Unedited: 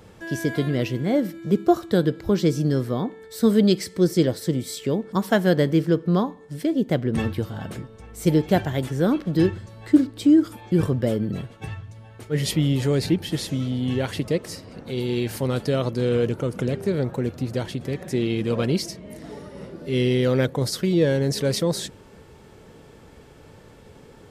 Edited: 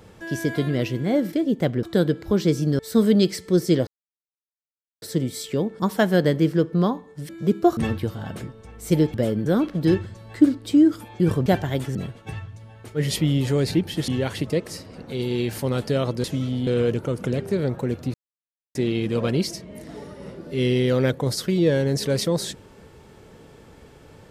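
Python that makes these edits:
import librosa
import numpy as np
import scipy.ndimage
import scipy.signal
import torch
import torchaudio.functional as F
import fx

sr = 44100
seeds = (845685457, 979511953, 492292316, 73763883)

y = fx.edit(x, sr, fx.swap(start_s=1.33, length_s=0.48, other_s=6.62, other_length_s=0.5),
    fx.cut(start_s=2.77, length_s=0.5),
    fx.insert_silence(at_s=4.35, length_s=1.15),
    fx.swap(start_s=8.49, length_s=0.49, other_s=10.98, other_length_s=0.32),
    fx.move(start_s=13.43, length_s=0.43, to_s=16.02),
    fx.silence(start_s=17.49, length_s=0.61), tone=tone)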